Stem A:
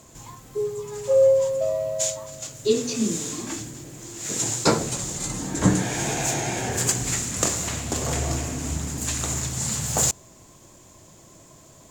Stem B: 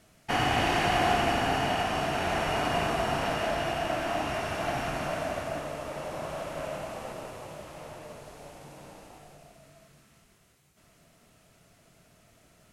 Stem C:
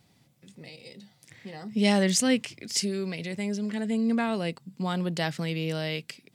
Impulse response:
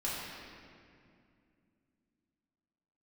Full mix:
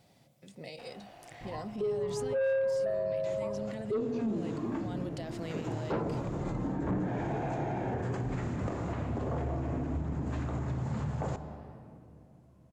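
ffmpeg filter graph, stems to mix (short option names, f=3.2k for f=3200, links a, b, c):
-filter_complex "[0:a]lowpass=1.1k,agate=range=-33dB:threshold=-39dB:ratio=3:detection=peak,adelay=1250,volume=2dB,asplit=2[a][b];[b]volume=-17.5dB[c];[1:a]acompressor=threshold=-40dB:ratio=3,adelay=500,volume=-19.5dB[d];[2:a]acompressor=threshold=-33dB:ratio=6,volume=-2dB[e];[d][e]amix=inputs=2:normalize=0,equalizer=f=610:t=o:w=0.77:g=10.5,alimiter=level_in=8dB:limit=-24dB:level=0:latency=1:release=34,volume=-8dB,volume=0dB[f];[3:a]atrim=start_sample=2205[g];[c][g]afir=irnorm=-1:irlink=0[h];[a][f][h]amix=inputs=3:normalize=0,asoftclip=type=tanh:threshold=-14.5dB,alimiter=level_in=2dB:limit=-24dB:level=0:latency=1:release=192,volume=-2dB"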